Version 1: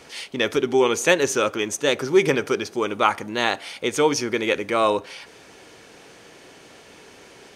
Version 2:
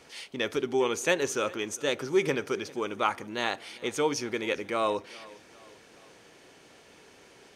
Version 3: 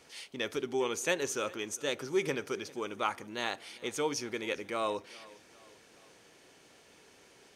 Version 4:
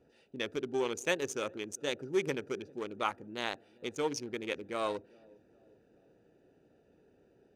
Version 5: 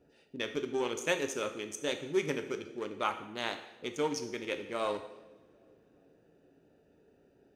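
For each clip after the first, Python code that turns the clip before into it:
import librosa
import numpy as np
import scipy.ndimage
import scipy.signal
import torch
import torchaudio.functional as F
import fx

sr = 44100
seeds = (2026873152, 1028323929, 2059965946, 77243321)

y1 = fx.echo_feedback(x, sr, ms=401, feedback_pct=50, wet_db=-22.0)
y1 = F.gain(torch.from_numpy(y1), -8.0).numpy()
y2 = fx.high_shelf(y1, sr, hz=4700.0, db=5.0)
y2 = F.gain(torch.from_numpy(y2), -5.5).numpy()
y3 = fx.wiener(y2, sr, points=41)
y4 = fx.rev_double_slope(y3, sr, seeds[0], early_s=0.81, late_s=2.9, knee_db=-25, drr_db=6.5)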